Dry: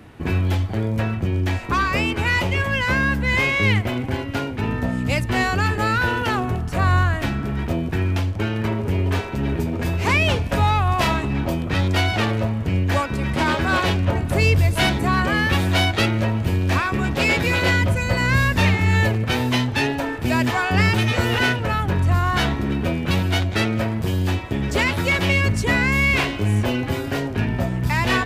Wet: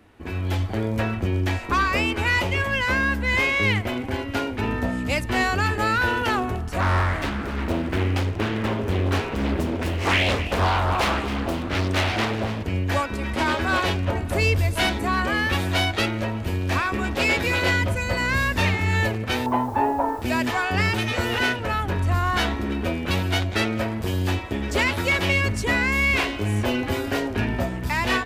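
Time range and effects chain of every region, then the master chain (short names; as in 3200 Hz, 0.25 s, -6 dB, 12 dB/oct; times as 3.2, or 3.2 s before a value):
6.8–12.63 frequency-shifting echo 0.261 s, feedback 57%, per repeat +58 Hz, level -12.5 dB + Doppler distortion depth 0.69 ms
19.46–20.22 synth low-pass 930 Hz, resonance Q 3.7 + requantised 8-bit, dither none
whole clip: bell 140 Hz -14 dB 0.54 oct; AGC; gain -8.5 dB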